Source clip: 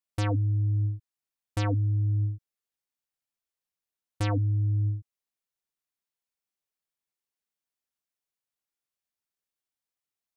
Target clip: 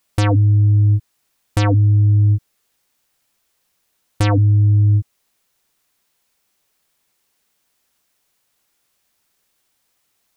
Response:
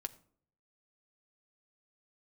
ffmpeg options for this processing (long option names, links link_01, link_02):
-af "alimiter=level_in=30.5dB:limit=-1dB:release=50:level=0:latency=1,volume=-7.5dB"